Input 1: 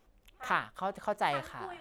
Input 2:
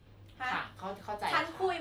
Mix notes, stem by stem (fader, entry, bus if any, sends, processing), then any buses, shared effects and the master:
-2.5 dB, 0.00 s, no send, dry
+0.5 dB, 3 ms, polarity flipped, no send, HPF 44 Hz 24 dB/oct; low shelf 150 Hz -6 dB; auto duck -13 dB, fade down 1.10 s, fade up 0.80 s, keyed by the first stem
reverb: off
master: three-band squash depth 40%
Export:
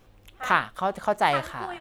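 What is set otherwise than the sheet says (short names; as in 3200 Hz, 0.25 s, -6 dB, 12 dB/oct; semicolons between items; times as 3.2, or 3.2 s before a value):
stem 1 -2.5 dB -> +8.5 dB; master: missing three-band squash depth 40%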